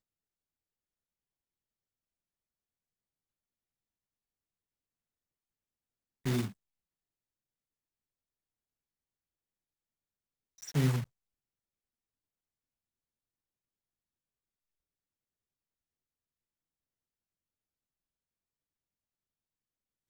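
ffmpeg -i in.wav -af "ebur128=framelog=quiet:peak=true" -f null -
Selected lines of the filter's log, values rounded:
Integrated loudness:
  I:         -33.4 LUFS
  Threshold: -44.6 LUFS
Loudness range:
  LRA:         4.8 LU
  Threshold: -60.8 LUFS
  LRA low:   -43.7 LUFS
  LRA high:  -38.9 LUFS
True peak:
  Peak:      -17.6 dBFS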